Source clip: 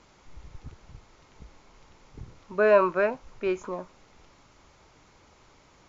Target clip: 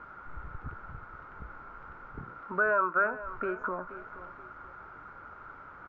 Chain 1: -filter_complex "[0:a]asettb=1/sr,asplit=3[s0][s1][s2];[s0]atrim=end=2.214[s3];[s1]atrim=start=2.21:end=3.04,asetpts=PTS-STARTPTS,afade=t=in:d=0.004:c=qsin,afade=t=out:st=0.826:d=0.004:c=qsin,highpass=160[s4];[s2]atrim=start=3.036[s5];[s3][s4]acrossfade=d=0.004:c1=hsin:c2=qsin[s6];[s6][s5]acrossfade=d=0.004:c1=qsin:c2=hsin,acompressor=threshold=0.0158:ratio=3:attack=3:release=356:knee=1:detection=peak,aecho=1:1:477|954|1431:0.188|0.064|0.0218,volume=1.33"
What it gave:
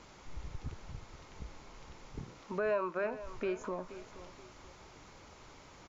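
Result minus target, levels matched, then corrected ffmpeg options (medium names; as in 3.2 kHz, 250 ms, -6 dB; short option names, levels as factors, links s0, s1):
1 kHz band -3.0 dB
-filter_complex "[0:a]asettb=1/sr,asplit=3[s0][s1][s2];[s0]atrim=end=2.214[s3];[s1]atrim=start=2.21:end=3.04,asetpts=PTS-STARTPTS,afade=t=in:d=0.004:c=qsin,afade=t=out:st=0.826:d=0.004:c=qsin,highpass=160[s4];[s2]atrim=start=3.036[s5];[s3][s4]acrossfade=d=0.004:c1=hsin:c2=qsin[s6];[s6][s5]acrossfade=d=0.004:c1=qsin:c2=hsin,acompressor=threshold=0.0158:ratio=3:attack=3:release=356:knee=1:detection=peak,lowpass=f=1400:t=q:w=12,aecho=1:1:477|954|1431:0.188|0.064|0.0218,volume=1.33"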